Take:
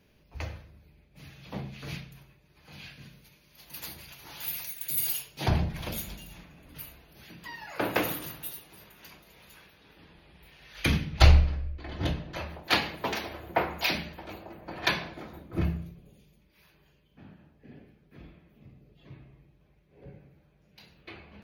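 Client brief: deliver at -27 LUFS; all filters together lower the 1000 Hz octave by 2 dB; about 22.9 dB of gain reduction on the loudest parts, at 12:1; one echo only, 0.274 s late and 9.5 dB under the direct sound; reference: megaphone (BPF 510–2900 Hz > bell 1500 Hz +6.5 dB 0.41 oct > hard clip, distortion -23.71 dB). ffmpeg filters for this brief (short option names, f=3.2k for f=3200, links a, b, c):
-af "equalizer=f=1k:t=o:g=-3.5,acompressor=threshold=-35dB:ratio=12,highpass=510,lowpass=2.9k,equalizer=f=1.5k:t=o:w=0.41:g=6.5,aecho=1:1:274:0.335,asoftclip=type=hard:threshold=-26dB,volume=19dB"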